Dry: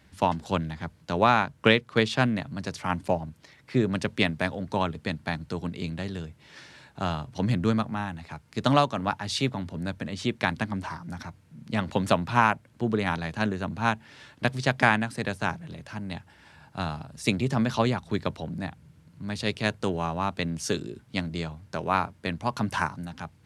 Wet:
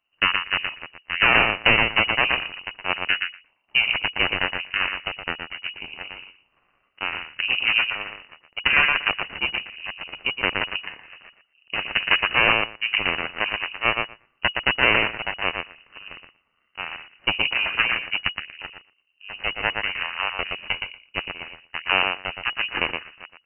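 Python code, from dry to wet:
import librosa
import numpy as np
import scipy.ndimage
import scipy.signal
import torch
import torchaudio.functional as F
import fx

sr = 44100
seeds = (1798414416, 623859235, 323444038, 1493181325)

p1 = fx.echo_feedback(x, sr, ms=118, feedback_pct=29, wet_db=-4)
p2 = fx.cheby_harmonics(p1, sr, harmonics=(3, 6), levels_db=(-10, -12), full_scale_db=-3.5)
p3 = np.clip(p2, -10.0 ** (-17.0 / 20.0), 10.0 ** (-17.0 / 20.0))
p4 = p2 + F.gain(torch.from_numpy(p3), -7.5).numpy()
p5 = fx.freq_invert(p4, sr, carrier_hz=2900)
y = F.gain(torch.from_numpy(p5), 2.5).numpy()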